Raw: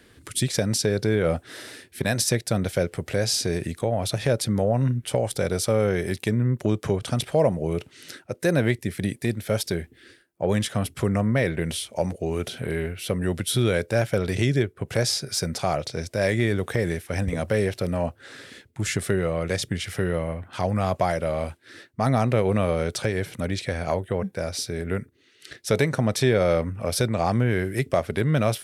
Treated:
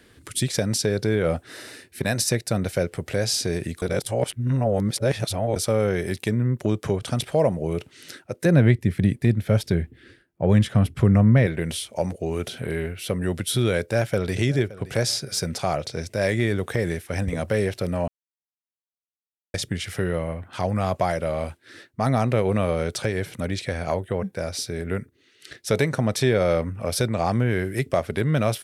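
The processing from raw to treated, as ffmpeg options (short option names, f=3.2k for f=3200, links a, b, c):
-filter_complex "[0:a]asettb=1/sr,asplit=3[a][b][c];[a]atrim=end=1.454[d];[b]atrim=start=1.45:end=2.88,asetpts=PTS-STARTPTS,afade=t=in:d=0.004:c=qsin,afade=t=out:st=1.426:d=0.004:c=qsin,bandreject=f=3.3k:w=12[e];[c]atrim=start=2.876[f];[d][e]acrossfade=d=0.004:c1=hsin:c2=qsin[g];[g][f]acrossfade=d=0.004:c1=qsin:c2=hsin,asettb=1/sr,asplit=3[h][i][j];[h]atrim=end=8.454[k];[i]atrim=start=8.45:end=11.47,asetpts=PTS-STARTPTS,afade=t=in:d=0.004:c=qsin,afade=t=out:st=3.016:d=0.004:c=qsin,bass=f=250:g=9,treble=f=4k:g=-8[l];[j]atrim=start=11.466[m];[k][l]acrossfade=d=0.004:c1=hsin:c2=qsin[n];[n][m]acrossfade=d=0.004:c1=qsin:c2=hsin,asplit=2[o][p];[p]afade=t=in:st=13.8:d=0.01,afade=t=out:st=14.41:d=0.01,aecho=0:1:570|1140|1710:0.125893|0.050357|0.0201428[q];[o][q]amix=inputs=2:normalize=0,asplit=5[r][s][t][u][v];[r]atrim=end=3.822[w];[s]atrim=start=3.818:end=5.562,asetpts=PTS-STARTPTS,areverse[x];[t]atrim=start=5.558:end=18.08,asetpts=PTS-STARTPTS,afade=t=out:st=12.518:d=0.004:c=hsin[y];[u]atrim=start=18.08:end=19.54,asetpts=PTS-STARTPTS,volume=0[z];[v]atrim=start=19.54,asetpts=PTS-STARTPTS,afade=t=in:d=0.004:c=hsin[aa];[w][x]acrossfade=d=0.004:c1=hsin:c2=hsin[ab];[y][z][aa]concat=n=3:v=0:a=1[ac];[ab][ac]acrossfade=d=0.004:c1=hsin:c2=hsin"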